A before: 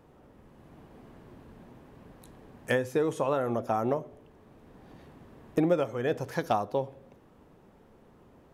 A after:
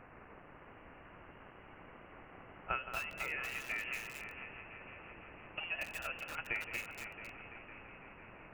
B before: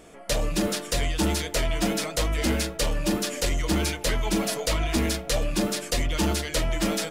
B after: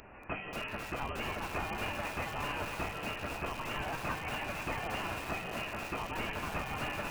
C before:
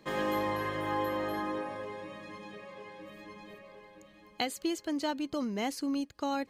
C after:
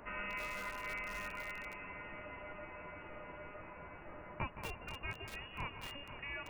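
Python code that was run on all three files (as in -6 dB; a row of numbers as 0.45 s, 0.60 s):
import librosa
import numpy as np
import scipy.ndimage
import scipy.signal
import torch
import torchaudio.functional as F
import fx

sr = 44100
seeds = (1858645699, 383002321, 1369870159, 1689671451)

y = x + 0.5 * 10.0 ** (-26.5 / 20.0) * np.diff(np.sign(x), prepend=np.sign(x[:1]))
y = np.diff(y, prepend=0.0)
y = fx.echo_heads(y, sr, ms=168, heads='first and third', feedback_pct=69, wet_db=-11.5)
y = fx.freq_invert(y, sr, carrier_hz=3100)
y = fx.echo_crushed(y, sr, ms=234, feedback_pct=35, bits=8, wet_db=-4.0)
y = y * librosa.db_to_amplitude(7.0)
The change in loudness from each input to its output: -12.0 LU, -11.0 LU, -10.5 LU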